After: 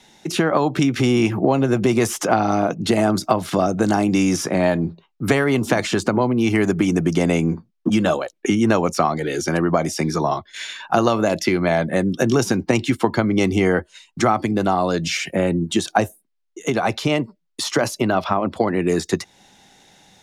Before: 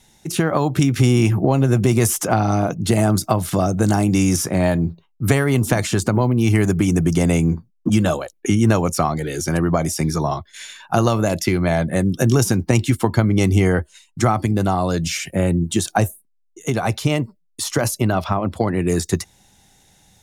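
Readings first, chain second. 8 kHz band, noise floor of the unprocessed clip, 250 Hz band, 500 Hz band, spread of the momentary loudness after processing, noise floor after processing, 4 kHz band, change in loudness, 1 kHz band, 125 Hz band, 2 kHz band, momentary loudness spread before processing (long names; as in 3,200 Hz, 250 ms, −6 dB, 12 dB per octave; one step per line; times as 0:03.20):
−4.5 dB, −63 dBFS, −0.5 dB, +1.5 dB, 6 LU, −65 dBFS, +1.5 dB, −1.0 dB, +2.0 dB, −7.0 dB, +2.0 dB, 8 LU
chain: three-way crossover with the lows and the highs turned down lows −15 dB, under 180 Hz, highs −13 dB, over 5,800 Hz
in parallel at +1 dB: downward compressor, threshold −31 dBFS, peak gain reduction 17 dB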